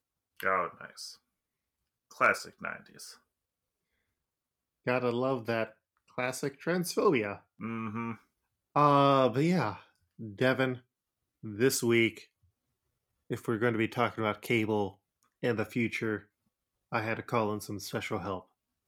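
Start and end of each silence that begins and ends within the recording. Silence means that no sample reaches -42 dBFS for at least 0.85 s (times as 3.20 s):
1.13–2.11 s
3.12–4.87 s
12.22–13.31 s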